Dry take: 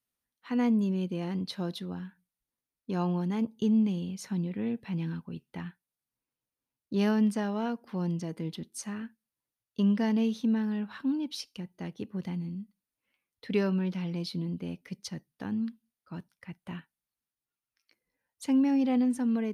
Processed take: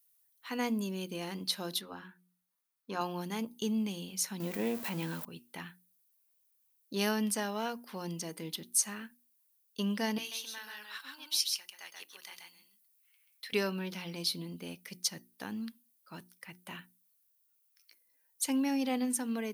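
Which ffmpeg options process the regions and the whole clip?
-filter_complex "[0:a]asettb=1/sr,asplit=3[a][b][c];[a]atrim=end=1.814[d];[b]atrim=start=1.81:end=3.01,asetpts=PTS-STARTPTS,afade=t=in:d=0.004:c=qsin,afade=t=out:st=1.196:d=0.004:c=qsin,lowpass=f=3k:p=1,equalizer=f=1.2k:w=1.7:g=6,bandreject=f=60:t=h:w=6,bandreject=f=120:t=h:w=6,bandreject=f=180:t=h:w=6,bandreject=f=240:t=h:w=6,bandreject=f=300:t=h:w=6,bandreject=f=360:t=h:w=6,bandreject=f=420:t=h:w=6[e];[c]atrim=start=3.006[f];[d][e]acrossfade=d=0.004:c1=hsin:c2=qsin[g];[g][f]acrossfade=d=0.004:c1=qsin:c2=hsin,asettb=1/sr,asplit=3[h][i][j];[h]atrim=end=4.404[k];[i]atrim=start=4.4:end=5.25,asetpts=PTS-STARTPTS,afade=t=in:d=0.004:c=qsin,afade=t=out:st=0.846:d=0.004:c=qsin,aeval=exprs='val(0)+0.5*0.00531*sgn(val(0))':c=same,equalizer=f=540:t=o:w=2.7:g=7[l];[j]atrim=start=5.246[m];[k][l]acrossfade=d=0.004:c1=hsin:c2=qsin[n];[n][m]acrossfade=d=0.004:c1=qsin:c2=hsin,asettb=1/sr,asplit=3[o][p][q];[o]atrim=end=10.184[r];[p]atrim=start=10.18:end=13.53,asetpts=PTS-STARTPTS,afade=t=in:d=0.004:c=qsin,afade=t=out:st=3.346:d=0.004:c=qsin,highpass=1.2k,aecho=1:1:133:0.668,atrim=end_sample=147735[s];[q]atrim=start=13.526[t];[r][s]acrossfade=d=0.004:c1=hsin:c2=qsin[u];[u][t]acrossfade=d=0.004:c1=qsin:c2=hsin,aemphasis=mode=production:type=riaa,bandreject=f=60:t=h:w=6,bandreject=f=120:t=h:w=6,bandreject=f=180:t=h:w=6,bandreject=f=240:t=h:w=6,bandreject=f=300:t=h:w=6,bandreject=f=360:t=h:w=6"

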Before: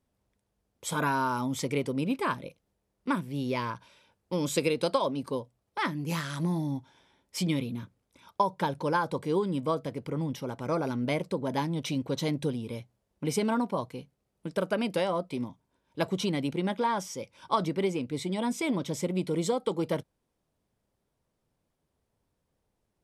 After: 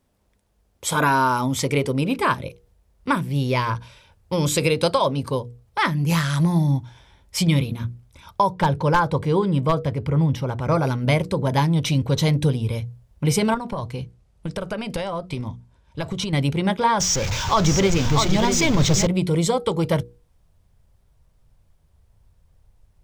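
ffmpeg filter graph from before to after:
-filter_complex "[0:a]asettb=1/sr,asplit=3[a][b][c];[a]atrim=end=8.524[d];[b]atrim=start=8.52:end=10.75,asetpts=PTS-STARTPTS,afade=t=in:d=0.004:c=qsin,afade=t=out:st=2.226:d=0.004:c=qsin,aemphasis=mode=reproduction:type=cd,aeval=exprs='0.126*(abs(mod(val(0)/0.126+3,4)-2)-1)':c=same[e];[c]atrim=start=10.746[f];[d][e]acrossfade=d=0.004:c1=hsin:c2=qsin[g];[g][f]acrossfade=d=0.004:c1=qsin:c2=hsin,asettb=1/sr,asplit=3[h][i][j];[h]atrim=end=13.544[k];[i]atrim=start=13.54:end=16.33,asetpts=PTS-STARTPTS,afade=t=in:d=0.004:c=qsin,afade=t=out:st=2.786:d=0.004:c=qsin,lowpass=9.8k,acompressor=threshold=-31dB:ratio=10:attack=3.2:release=140:knee=1:detection=peak[l];[j]atrim=start=16.326[m];[k][l]acrossfade=d=0.004:c1=hsin:c2=qsin[n];[n][m]acrossfade=d=0.004:c1=qsin:c2=hsin,asettb=1/sr,asplit=3[o][p][q];[o]atrim=end=17.004[r];[p]atrim=start=17:end=19.07,asetpts=PTS-STARTPTS,afade=t=in:d=0.004:c=qsin,afade=t=out:st=2.066:d=0.004:c=qsin,aeval=exprs='val(0)+0.5*0.0224*sgn(val(0))':c=same,highshelf=f=7.9k:t=q:w=3:g=-7.5,aecho=1:1:644:0.501,atrim=end_sample=91287[s];[q]atrim=start=19.066[t];[r][s]acrossfade=d=0.004:c1=hsin:c2=qsin[u];[u][t]acrossfade=d=0.004:c1=qsin:c2=hsin,bandreject=f=60:t=h:w=6,bandreject=f=120:t=h:w=6,bandreject=f=180:t=h:w=6,bandreject=f=240:t=h:w=6,bandreject=f=300:t=h:w=6,bandreject=f=360:t=h:w=6,bandreject=f=420:t=h:w=6,bandreject=f=480:t=h:w=6,asubboost=boost=11:cutoff=80,alimiter=level_in=16.5dB:limit=-1dB:release=50:level=0:latency=1,volume=-6.5dB"

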